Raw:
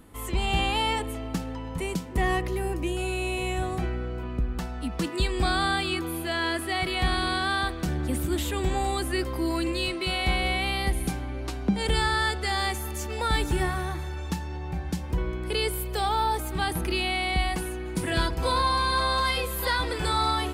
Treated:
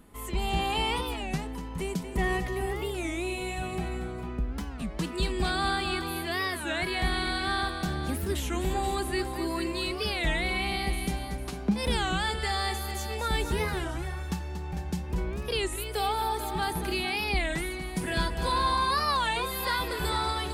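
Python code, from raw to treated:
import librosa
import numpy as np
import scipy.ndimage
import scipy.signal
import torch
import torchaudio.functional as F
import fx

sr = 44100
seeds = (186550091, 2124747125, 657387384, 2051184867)

y = x + 0.32 * np.pad(x, (int(4.9 * sr / 1000.0), 0))[:len(x)]
y = fx.echo_multitap(y, sr, ms=(234, 450), db=(-10.0, -10.0))
y = fx.record_warp(y, sr, rpm=33.33, depth_cents=250.0)
y = y * librosa.db_to_amplitude(-3.5)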